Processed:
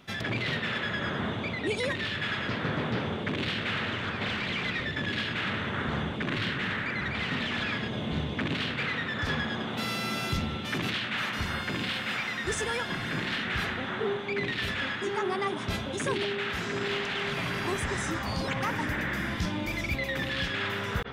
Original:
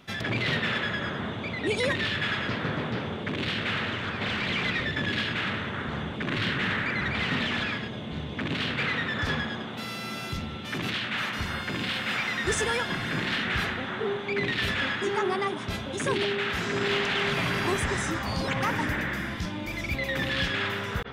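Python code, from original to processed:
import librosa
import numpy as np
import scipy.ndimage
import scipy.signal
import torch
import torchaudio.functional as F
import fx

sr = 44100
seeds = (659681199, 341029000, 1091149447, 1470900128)

y = fx.rider(x, sr, range_db=10, speed_s=0.5)
y = y * 10.0 ** (-2.0 / 20.0)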